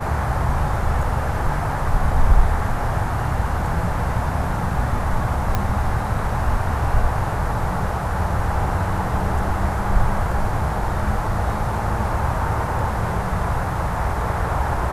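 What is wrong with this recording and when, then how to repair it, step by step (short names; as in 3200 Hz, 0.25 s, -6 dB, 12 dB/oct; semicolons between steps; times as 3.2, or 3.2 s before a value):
5.55 pop -7 dBFS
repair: de-click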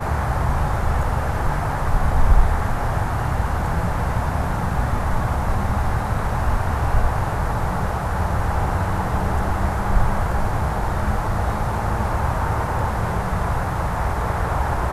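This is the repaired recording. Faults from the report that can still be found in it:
none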